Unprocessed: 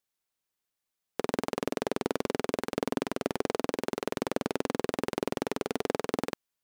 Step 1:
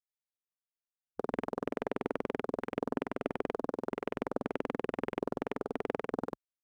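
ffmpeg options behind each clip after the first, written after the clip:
-af "afwtdn=0.01,volume=-4dB"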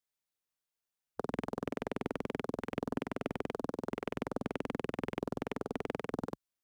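-filter_complex "[0:a]acrossover=split=200|3000[a][b][c];[b]acompressor=threshold=-43dB:ratio=2.5[d];[a][d][c]amix=inputs=3:normalize=0,volume=4.5dB"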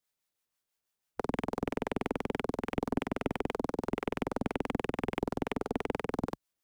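-filter_complex "[0:a]acrossover=split=730[a][b];[a]aeval=exprs='val(0)*(1-0.5/2+0.5/2*cos(2*PI*6.1*n/s))':c=same[c];[b]aeval=exprs='val(0)*(1-0.5/2-0.5/2*cos(2*PI*6.1*n/s))':c=same[d];[c][d]amix=inputs=2:normalize=0,aeval=exprs='(tanh(20*val(0)+0.4)-tanh(0.4))/20':c=same,volume=8.5dB"

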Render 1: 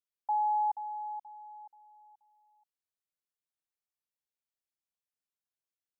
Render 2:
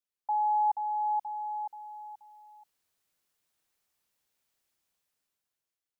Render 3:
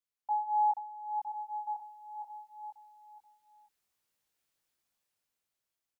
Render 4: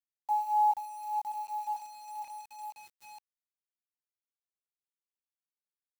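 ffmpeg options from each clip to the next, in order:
-af "dynaudnorm=f=320:g=7:m=14.5dB"
-af "flanger=delay=18.5:depth=2.2:speed=0.52,aecho=1:1:1029:0.422"
-af "acrusher=bits=8:mix=0:aa=0.000001,volume=2dB"

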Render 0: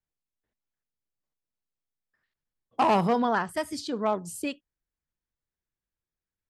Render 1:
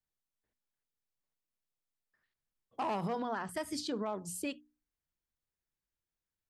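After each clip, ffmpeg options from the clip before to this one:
-af "bandreject=f=60:t=h:w=6,bandreject=f=120:t=h:w=6,bandreject=f=180:t=h:w=6,bandreject=f=240:t=h:w=6,bandreject=f=300:t=h:w=6,alimiter=level_in=1dB:limit=-24dB:level=0:latency=1:release=80,volume=-1dB,volume=-2.5dB"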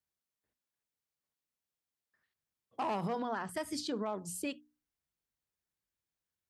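-af "highpass=55"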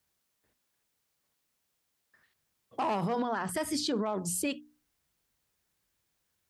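-filter_complex "[0:a]asplit=2[a][b];[b]acompressor=threshold=-46dB:ratio=6,volume=-2dB[c];[a][c]amix=inputs=2:normalize=0,alimiter=level_in=6.5dB:limit=-24dB:level=0:latency=1:release=31,volume=-6.5dB,volume=7.5dB"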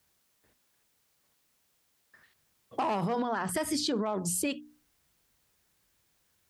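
-af "acompressor=threshold=-38dB:ratio=2,volume=6.5dB"

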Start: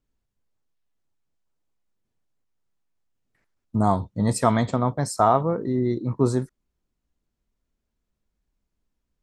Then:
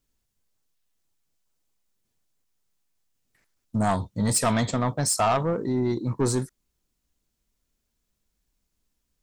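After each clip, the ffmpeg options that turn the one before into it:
-af "highshelf=f=3k:g=12,asoftclip=type=tanh:threshold=-16.5dB"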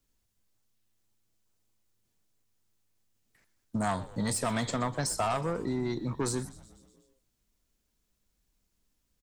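-filter_complex "[0:a]acrossover=split=150|1100[a][b][c];[a]acompressor=threshold=-42dB:ratio=4[d];[b]acompressor=threshold=-31dB:ratio=4[e];[c]acompressor=threshold=-33dB:ratio=4[f];[d][e][f]amix=inputs=3:normalize=0,asplit=7[g][h][i][j][k][l][m];[h]adelay=123,afreqshift=-110,volume=-18dB[n];[i]adelay=246,afreqshift=-220,volume=-22.2dB[o];[j]adelay=369,afreqshift=-330,volume=-26.3dB[p];[k]adelay=492,afreqshift=-440,volume=-30.5dB[q];[l]adelay=615,afreqshift=-550,volume=-34.6dB[r];[m]adelay=738,afreqshift=-660,volume=-38.8dB[s];[g][n][o][p][q][r][s]amix=inputs=7:normalize=0"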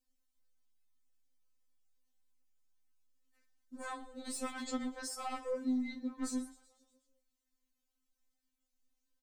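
-af "afftfilt=real='re*3.46*eq(mod(b,12),0)':imag='im*3.46*eq(mod(b,12),0)':win_size=2048:overlap=0.75,volume=-6.5dB"

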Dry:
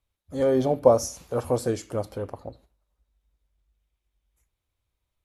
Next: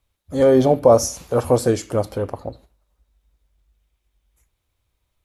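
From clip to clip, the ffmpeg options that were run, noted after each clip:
-af "alimiter=level_in=9dB:limit=-1dB:release=50:level=0:latency=1,volume=-1dB"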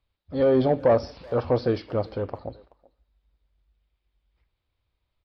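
-filter_complex "[0:a]asoftclip=type=tanh:threshold=-5dB,aresample=11025,aresample=44100,asplit=2[a][b];[b]adelay=380,highpass=300,lowpass=3.4k,asoftclip=type=hard:threshold=-14dB,volume=-22dB[c];[a][c]amix=inputs=2:normalize=0,volume=-5dB"

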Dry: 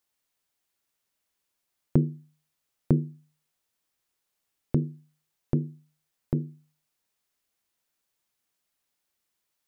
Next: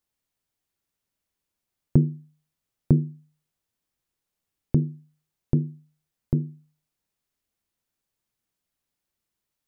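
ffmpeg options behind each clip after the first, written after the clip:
-af "lowshelf=f=310:g=11,volume=-4.5dB"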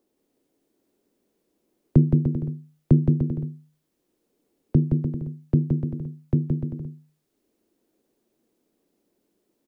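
-filter_complex "[0:a]acrossover=split=170|260|390[a][b][c][d];[c]acompressor=mode=upward:threshold=-55dB:ratio=2.5[e];[a][b][e][d]amix=inputs=4:normalize=0,aecho=1:1:170|297.5|393.1|464.8|518.6:0.631|0.398|0.251|0.158|0.1,volume=2dB"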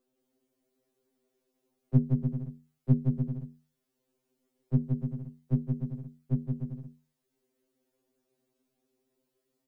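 -af "afftfilt=real='re*2.45*eq(mod(b,6),0)':imag='im*2.45*eq(mod(b,6),0)':win_size=2048:overlap=0.75,volume=-3dB"

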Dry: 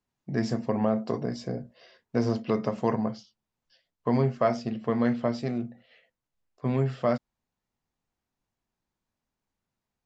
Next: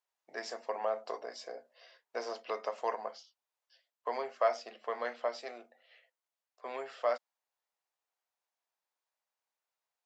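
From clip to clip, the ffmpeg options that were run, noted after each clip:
-af "highpass=f=540:w=0.5412,highpass=f=540:w=1.3066,volume=-3dB"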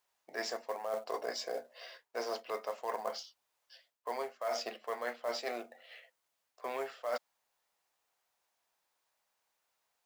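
-af "areverse,acompressor=threshold=-42dB:ratio=20,areverse,acrusher=bits=5:mode=log:mix=0:aa=0.000001,volume=9dB"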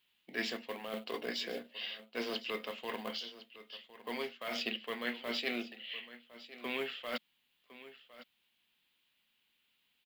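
-af "firequalizer=gain_entry='entry(100,0);entry(220,9);entry(330,-1);entry(640,-15);entry(3000,11);entry(5700,-13);entry(13000,-4)':delay=0.05:min_phase=1,aecho=1:1:1058:0.158,volume=5.5dB"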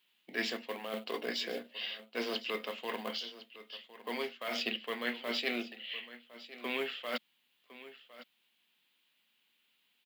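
-af "highpass=170,volume=2dB"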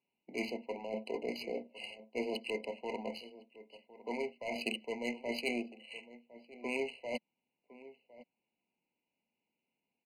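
-af "adynamicsmooth=sensitivity=5:basefreq=1.2k,afftfilt=real='re*eq(mod(floor(b*sr/1024/1000),2),0)':imag='im*eq(mod(floor(b*sr/1024/1000),2),0)':win_size=1024:overlap=0.75,volume=1dB"

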